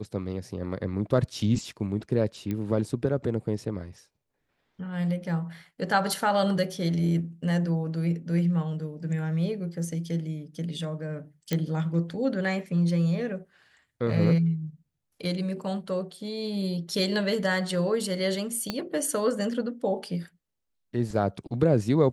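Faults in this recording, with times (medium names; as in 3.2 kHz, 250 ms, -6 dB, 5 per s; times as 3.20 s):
2.51 s: pop -19 dBFS
11.53 s: pop -12 dBFS
18.70 s: pop -13 dBFS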